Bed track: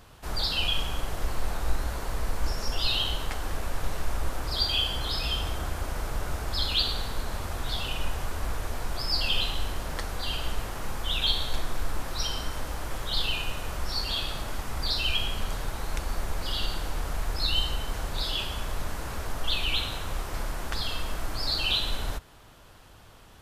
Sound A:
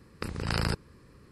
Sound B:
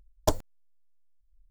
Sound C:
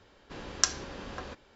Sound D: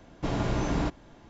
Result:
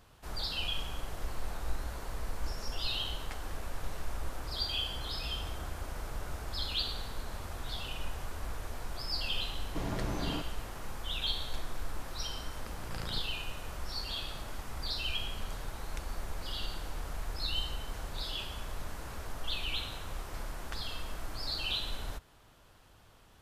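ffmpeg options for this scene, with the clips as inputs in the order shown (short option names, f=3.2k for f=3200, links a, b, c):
-filter_complex "[0:a]volume=-8dB[a];[4:a]atrim=end=1.29,asetpts=PTS-STARTPTS,volume=-8dB,afade=t=in:d=0.004:c=hsin,afade=t=out:st=1.286:d=0.004:c=hsin,adelay=9520[b];[1:a]atrim=end=1.31,asetpts=PTS-STARTPTS,volume=-14dB,afade=t=in:d=0.004:c=hsin,afade=t=out:st=1.306:d=0.004:c=hsin,adelay=12440[c];[a][b][c]amix=inputs=3:normalize=0"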